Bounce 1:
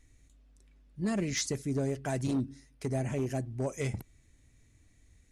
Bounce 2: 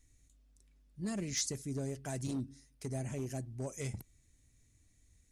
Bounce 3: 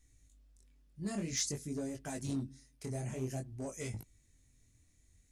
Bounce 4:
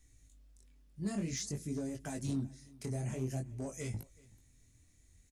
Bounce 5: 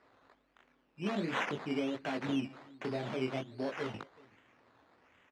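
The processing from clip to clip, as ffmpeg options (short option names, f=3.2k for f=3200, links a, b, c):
-af "bass=f=250:g=3,treble=f=4k:g=9,volume=-8.5dB"
-af "flanger=delay=18:depth=7.4:speed=0.52,volume=3dB"
-filter_complex "[0:a]acrossover=split=280[a][b];[b]acompressor=threshold=-47dB:ratio=2[c];[a][c]amix=inputs=2:normalize=0,aecho=1:1:376:0.0668,volume=2.5dB"
-af "acrusher=samples=13:mix=1:aa=0.000001:lfo=1:lforange=7.8:lforate=1.3,highpass=310,lowpass=3.3k,volume=8dB"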